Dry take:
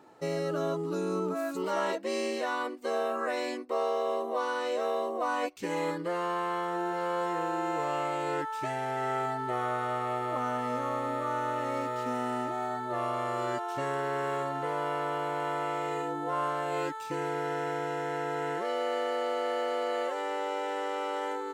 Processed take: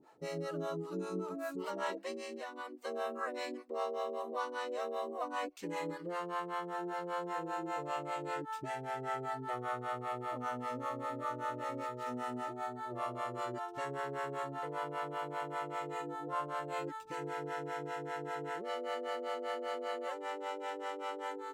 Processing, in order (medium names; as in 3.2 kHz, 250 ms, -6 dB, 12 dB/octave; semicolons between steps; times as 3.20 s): harmonic tremolo 5.1 Hz, depth 100%, crossover 480 Hz; 2.11–2.85 s: compression, threshold -38 dBFS, peak gain reduction 7.5 dB; trim -2.5 dB